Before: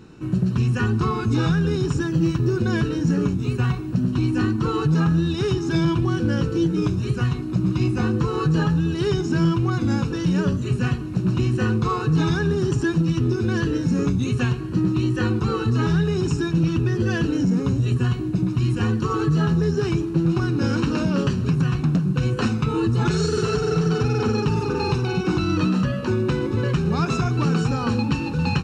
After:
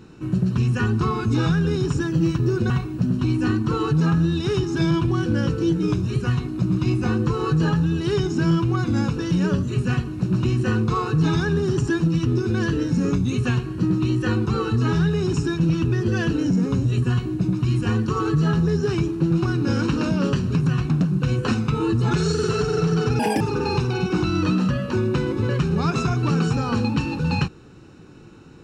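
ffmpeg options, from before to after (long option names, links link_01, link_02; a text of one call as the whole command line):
ffmpeg -i in.wav -filter_complex "[0:a]asplit=4[link_01][link_02][link_03][link_04];[link_01]atrim=end=2.702[link_05];[link_02]atrim=start=3.638:end=24.134[link_06];[link_03]atrim=start=24.13:end=24.55,asetpts=PTS-STARTPTS,asetrate=85554,aresample=44100,atrim=end_sample=9547,asetpts=PTS-STARTPTS[link_07];[link_04]atrim=start=24.546[link_08];[link_05][link_06]acrossfade=duration=0.004:curve1=hsin:curve2=hsin[link_09];[link_09][link_07]acrossfade=duration=0.004:curve1=hsin:curve2=hsin[link_10];[link_10][link_08]acrossfade=duration=0.004:curve1=hsin:curve2=hsin" out.wav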